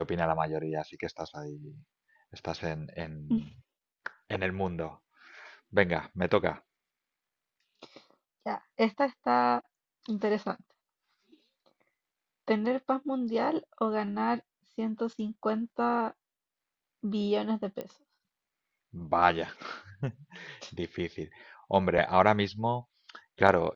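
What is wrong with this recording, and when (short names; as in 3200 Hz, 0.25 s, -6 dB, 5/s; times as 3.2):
17.81 pop -24 dBFS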